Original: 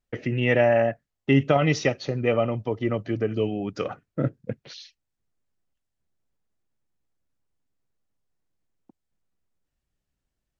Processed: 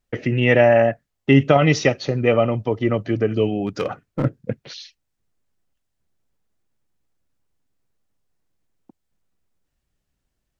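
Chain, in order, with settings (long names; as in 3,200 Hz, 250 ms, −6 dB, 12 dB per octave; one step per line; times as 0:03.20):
0:03.66–0:04.25: hard clipping −21.5 dBFS, distortion −25 dB
level +5.5 dB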